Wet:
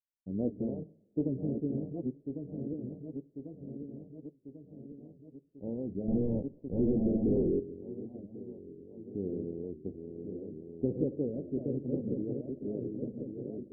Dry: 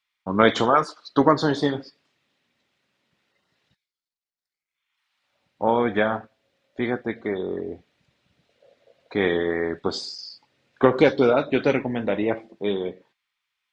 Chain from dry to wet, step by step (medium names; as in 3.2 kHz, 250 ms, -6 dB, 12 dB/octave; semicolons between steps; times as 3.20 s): backward echo that repeats 547 ms, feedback 74%, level -5 dB; 6.08–7.60 s: waveshaping leveller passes 5; Gaussian low-pass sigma 24 samples; on a send at -16 dB: reverberation, pre-delay 3 ms; on the sum: warped record 78 rpm, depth 160 cents; trim -7 dB